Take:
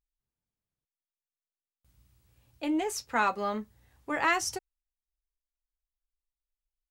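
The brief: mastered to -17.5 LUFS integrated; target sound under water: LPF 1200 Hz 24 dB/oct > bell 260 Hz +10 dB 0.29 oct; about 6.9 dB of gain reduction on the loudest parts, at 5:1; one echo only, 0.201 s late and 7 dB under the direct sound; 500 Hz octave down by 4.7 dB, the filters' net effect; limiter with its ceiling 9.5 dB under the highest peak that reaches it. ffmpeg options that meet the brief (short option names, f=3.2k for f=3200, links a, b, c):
-af "equalizer=f=500:t=o:g=-7.5,acompressor=threshold=-30dB:ratio=5,alimiter=level_in=3.5dB:limit=-24dB:level=0:latency=1,volume=-3.5dB,lowpass=f=1.2k:w=0.5412,lowpass=f=1.2k:w=1.3066,equalizer=f=260:t=o:w=0.29:g=10,aecho=1:1:201:0.447,volume=21dB"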